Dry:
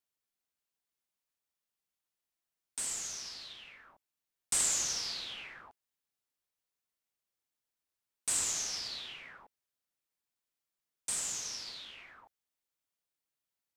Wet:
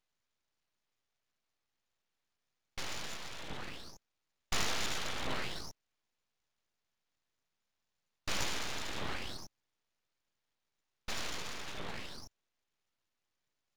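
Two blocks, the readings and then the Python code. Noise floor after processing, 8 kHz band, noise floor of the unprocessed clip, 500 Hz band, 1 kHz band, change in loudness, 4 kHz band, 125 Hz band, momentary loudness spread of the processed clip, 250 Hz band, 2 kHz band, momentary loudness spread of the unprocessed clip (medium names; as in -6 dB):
under -85 dBFS, -12.0 dB, under -85 dBFS, +9.0 dB, +8.0 dB, -5.5 dB, -1.0 dB, +11.5 dB, 15 LU, +10.5 dB, +5.5 dB, 19 LU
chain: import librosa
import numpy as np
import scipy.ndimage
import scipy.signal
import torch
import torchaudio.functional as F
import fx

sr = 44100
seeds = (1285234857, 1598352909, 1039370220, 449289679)

y = fx.low_shelf_res(x, sr, hz=180.0, db=6.5, q=1.5)
y = fx.freq_invert(y, sr, carrier_hz=3600)
y = np.abs(y)
y = F.gain(torch.from_numpy(y), 11.0).numpy()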